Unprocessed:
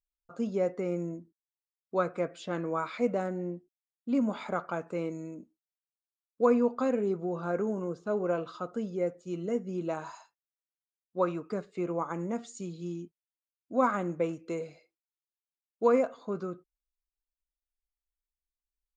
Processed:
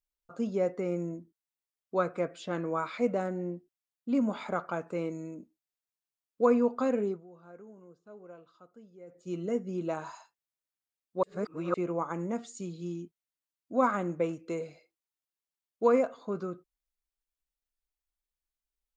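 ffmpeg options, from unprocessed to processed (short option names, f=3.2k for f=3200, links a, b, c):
-filter_complex "[0:a]asplit=5[a][b][c][d][e];[a]atrim=end=7.24,asetpts=PTS-STARTPTS,afade=t=out:st=7.03:d=0.21:silence=0.105925[f];[b]atrim=start=7.24:end=9.07,asetpts=PTS-STARTPTS,volume=-19.5dB[g];[c]atrim=start=9.07:end=11.232,asetpts=PTS-STARTPTS,afade=t=in:d=0.21:silence=0.105925[h];[d]atrim=start=11.228:end=11.742,asetpts=PTS-STARTPTS,areverse[i];[e]atrim=start=11.738[j];[f][g][h]concat=n=3:v=0:a=1[k];[k][i]acrossfade=d=0.004:c1=hsin:c2=hsin[l];[l][j]acrossfade=d=0.004:c1=hsin:c2=hsin"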